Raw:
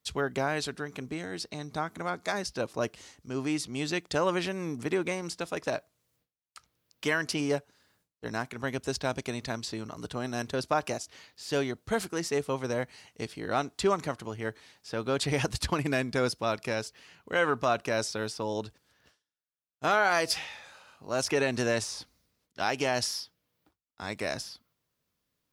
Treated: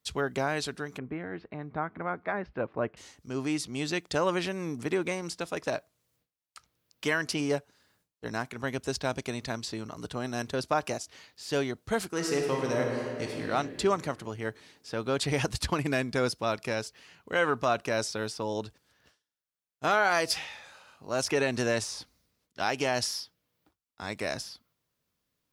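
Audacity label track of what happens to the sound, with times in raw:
0.980000	2.970000	low-pass filter 2,200 Hz 24 dB per octave
12.100000	13.470000	thrown reverb, RT60 2.4 s, DRR 0 dB

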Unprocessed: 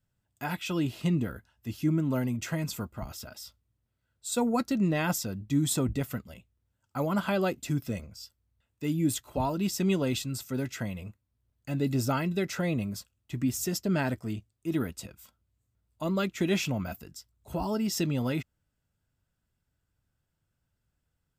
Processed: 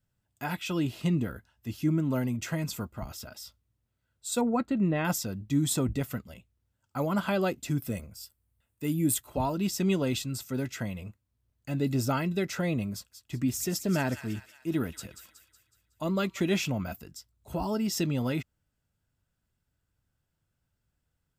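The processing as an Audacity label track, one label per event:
4.410000	5.050000	moving average over 8 samples
7.780000	9.270000	high shelf with overshoot 7,700 Hz +7 dB, Q 1.5
12.930000	16.400000	delay with a high-pass on its return 185 ms, feedback 49%, high-pass 1,600 Hz, level −9 dB

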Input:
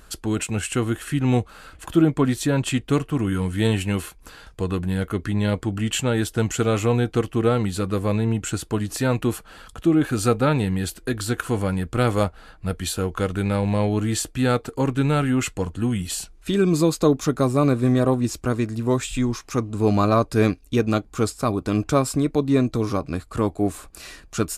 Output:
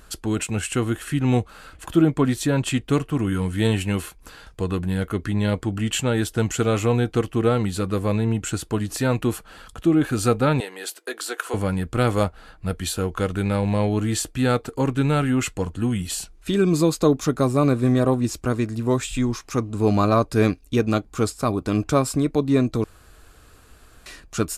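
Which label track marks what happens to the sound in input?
10.600000	11.540000	high-pass filter 420 Hz 24 dB per octave
22.840000	24.060000	fill with room tone

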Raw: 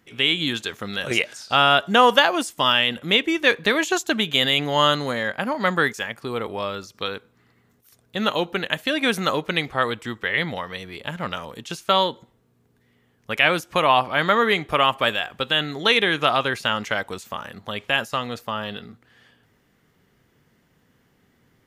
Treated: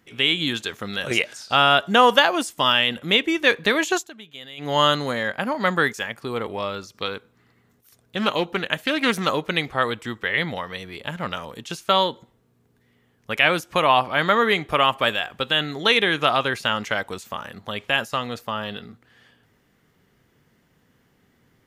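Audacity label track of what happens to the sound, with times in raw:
3.960000	4.710000	duck −20 dB, fades 0.14 s
6.360000	9.290000	highs frequency-modulated by the lows depth 0.16 ms

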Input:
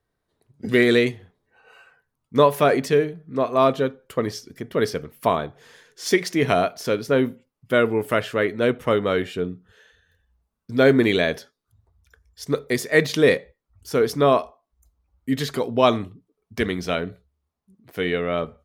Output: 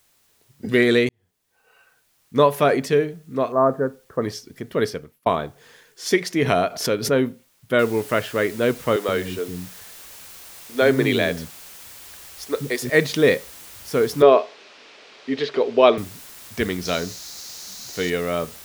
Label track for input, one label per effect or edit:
1.090000	2.450000	fade in
3.520000	4.220000	elliptic low-pass filter 1,700 Hz
4.840000	5.260000	fade out
6.420000	7.120000	background raised ahead of every attack at most 100 dB per second
7.790000	7.790000	noise floor change −62 dB −42 dB
8.960000	12.900000	multiband delay without the direct sound highs, lows 120 ms, split 280 Hz
14.220000	15.980000	loudspeaker in its box 270–4,700 Hz, peaks and dips at 420 Hz +9 dB, 600 Hz +4 dB, 2,500 Hz +4 dB
16.850000	18.100000	flat-topped bell 5,200 Hz +11.5 dB 1 octave

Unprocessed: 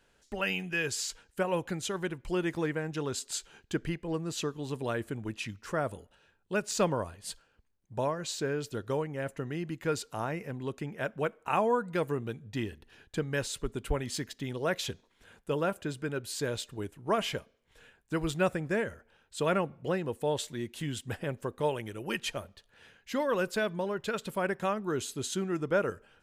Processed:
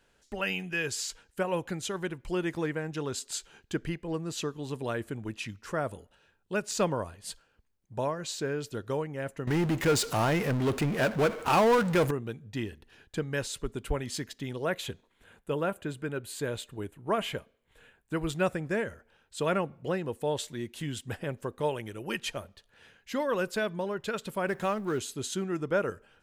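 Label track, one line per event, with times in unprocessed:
9.470000	12.110000	power curve on the samples exponent 0.5
14.650000	18.300000	parametric band 5,400 Hz −9.5 dB 0.57 octaves
24.470000	24.990000	mu-law and A-law mismatch coded by mu

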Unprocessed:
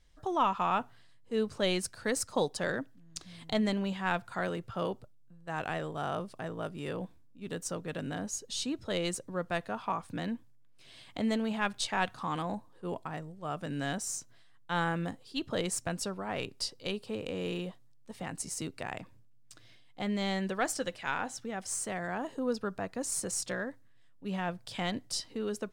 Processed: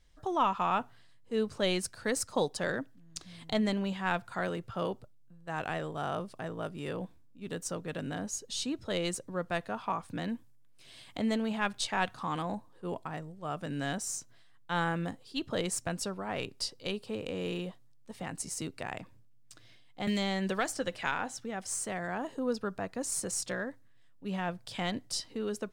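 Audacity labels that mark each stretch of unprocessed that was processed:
10.290000	11.180000	parametric band 12,000 Hz +5.5 dB 1.4 octaves
20.070000	21.120000	multiband upward and downward compressor depth 100%

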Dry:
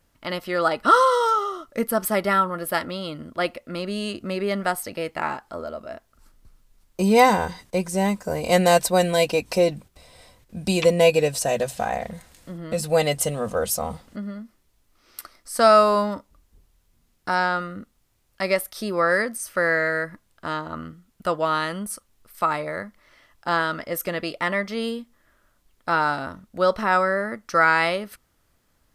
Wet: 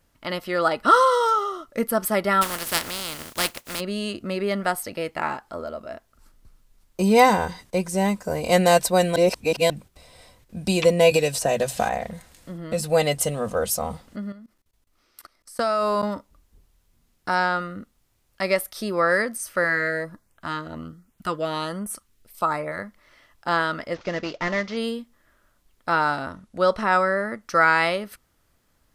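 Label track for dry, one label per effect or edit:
2.410000	3.790000	compressing power law on the bin magnitudes exponent 0.29
9.160000	9.700000	reverse
11.110000	11.890000	multiband upward and downward compressor depth 100%
14.320000	16.030000	output level in coarse steps of 22 dB
19.640000	22.790000	auto-filter notch saw up 1.3 Hz 400–5,300 Hz
23.940000	24.770000	variable-slope delta modulation 32 kbit/s
26.210000	27.410000	linear-phase brick-wall low-pass 12,000 Hz

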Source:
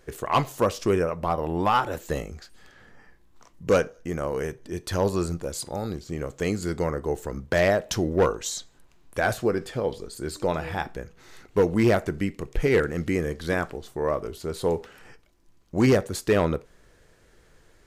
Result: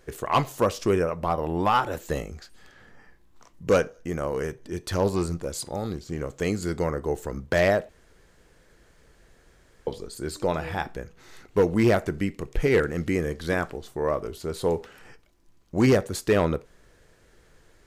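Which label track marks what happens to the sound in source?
4.350000	6.320000	highs frequency-modulated by the lows depth 0.13 ms
7.890000	9.870000	fill with room tone

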